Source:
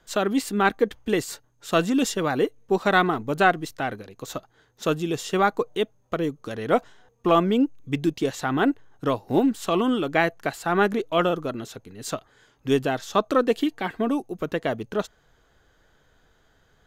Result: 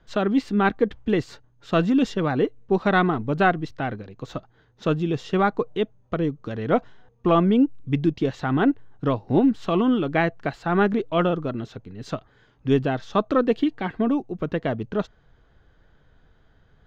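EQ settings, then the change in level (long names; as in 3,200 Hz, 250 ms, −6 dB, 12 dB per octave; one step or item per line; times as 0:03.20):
high-frequency loss of the air 230 metres
bass and treble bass +7 dB, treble +4 dB
0.0 dB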